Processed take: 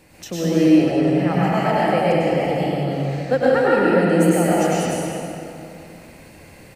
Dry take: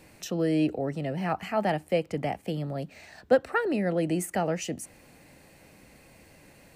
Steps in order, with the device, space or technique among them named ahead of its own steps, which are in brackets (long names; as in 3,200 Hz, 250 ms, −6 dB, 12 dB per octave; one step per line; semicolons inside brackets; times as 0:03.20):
cave (single-tap delay 206 ms −9 dB; convolution reverb RT60 2.7 s, pre-delay 92 ms, DRR −8 dB)
level +1.5 dB